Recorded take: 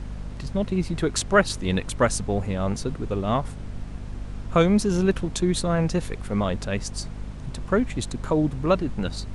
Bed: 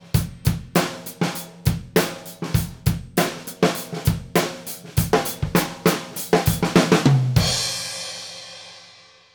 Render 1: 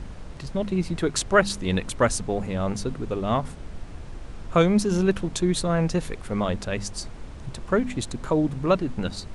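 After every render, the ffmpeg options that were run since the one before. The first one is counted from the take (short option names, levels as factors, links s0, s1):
-af "bandreject=f=50:t=h:w=4,bandreject=f=100:t=h:w=4,bandreject=f=150:t=h:w=4,bandreject=f=200:t=h:w=4,bandreject=f=250:t=h:w=4"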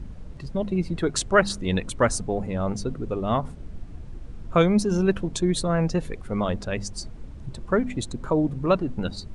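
-af "afftdn=nr=10:nf=-39"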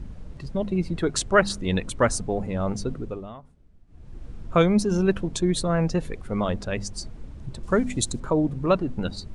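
-filter_complex "[0:a]asettb=1/sr,asplit=3[s0][s1][s2];[s0]atrim=end=7.634[s3];[s1]atrim=start=7.63:end=8.2,asetpts=PTS-STARTPTS,afade=t=in:d=0.004:c=qsin,afade=t=out:st=0.566:d=0.004:c=qsin,bass=f=250:g=2,treble=f=4000:g=12[s4];[s2]atrim=start=8.196[s5];[s3][s4]acrossfade=d=0.004:c1=hsin:c2=qsin[s6];[s6][s5]acrossfade=d=0.004:c1=qsin:c2=hsin,asplit=3[s7][s8][s9];[s7]atrim=end=3.33,asetpts=PTS-STARTPTS,afade=t=out:st=2.95:d=0.38:silence=0.112202[s10];[s8]atrim=start=3.33:end=3.87,asetpts=PTS-STARTPTS,volume=0.112[s11];[s9]atrim=start=3.87,asetpts=PTS-STARTPTS,afade=t=in:d=0.38:silence=0.112202[s12];[s10][s11][s12]concat=n=3:v=0:a=1"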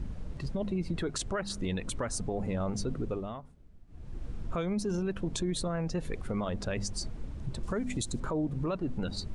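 -af "acompressor=threshold=0.0501:ratio=6,alimiter=limit=0.0631:level=0:latency=1:release=18"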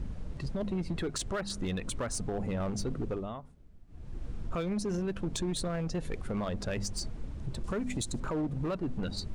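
-af "asoftclip=type=hard:threshold=0.0422"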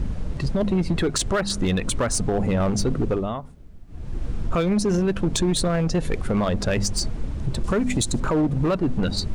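-af "volume=3.76"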